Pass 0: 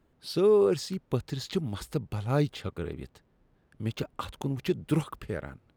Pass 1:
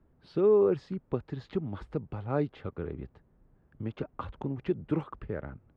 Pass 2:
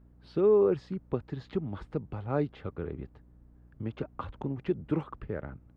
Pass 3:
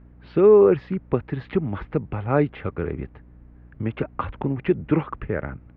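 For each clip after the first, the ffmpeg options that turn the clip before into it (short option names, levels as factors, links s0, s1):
-filter_complex "[0:a]lowpass=1700,lowshelf=f=200:g=7,acrossover=split=230[s0][s1];[s0]acompressor=threshold=0.0158:ratio=6[s2];[s2][s1]amix=inputs=2:normalize=0,volume=0.794"
-af "aeval=exprs='val(0)+0.00158*(sin(2*PI*60*n/s)+sin(2*PI*2*60*n/s)/2+sin(2*PI*3*60*n/s)/3+sin(2*PI*4*60*n/s)/4+sin(2*PI*5*60*n/s)/5)':c=same"
-af "lowpass=f=2300:t=q:w=2,volume=2.82"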